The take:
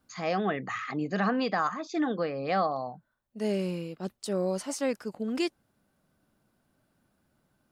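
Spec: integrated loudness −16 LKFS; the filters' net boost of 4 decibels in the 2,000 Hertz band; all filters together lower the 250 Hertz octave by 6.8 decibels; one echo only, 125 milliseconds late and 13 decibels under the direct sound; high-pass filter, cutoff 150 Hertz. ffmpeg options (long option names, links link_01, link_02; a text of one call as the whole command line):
ffmpeg -i in.wav -af "highpass=150,equalizer=frequency=250:width_type=o:gain=-8.5,equalizer=frequency=2000:width_type=o:gain=5,aecho=1:1:125:0.224,volume=16dB" out.wav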